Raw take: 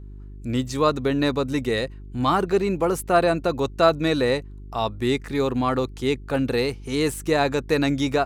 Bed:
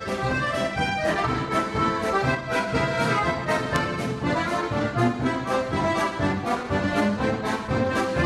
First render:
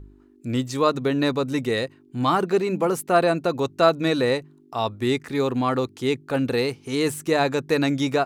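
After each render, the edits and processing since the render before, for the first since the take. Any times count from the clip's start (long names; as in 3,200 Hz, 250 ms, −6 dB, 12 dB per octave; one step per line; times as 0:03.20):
hum removal 50 Hz, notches 4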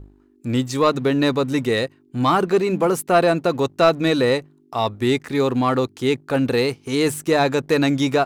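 leveller curve on the samples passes 1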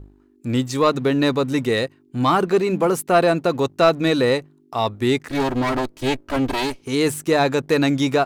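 0:05.30–0:06.82: lower of the sound and its delayed copy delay 3.1 ms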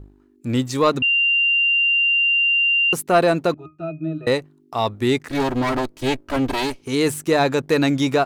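0:01.02–0:02.93: beep over 2,780 Hz −14.5 dBFS
0:03.54–0:04.27: resonances in every octave D#, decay 0.2 s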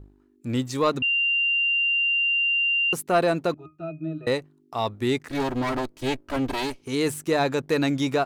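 level −5 dB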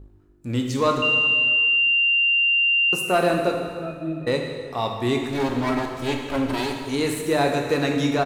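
echo with shifted repeats 200 ms, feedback 53%, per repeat −120 Hz, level −24 dB
dense smooth reverb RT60 1.9 s, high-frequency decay 0.85×, DRR 1.5 dB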